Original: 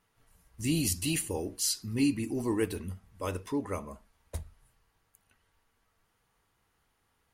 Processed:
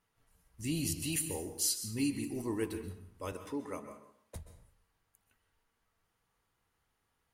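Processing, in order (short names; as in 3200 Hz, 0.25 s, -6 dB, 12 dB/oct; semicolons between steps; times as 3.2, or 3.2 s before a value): 1.12–2.42 high shelf 6900 Hz +8 dB; 3.32–4.36 HPF 170 Hz 12 dB/oct; reverb RT60 0.60 s, pre-delay 0.118 s, DRR 10 dB; gain -6 dB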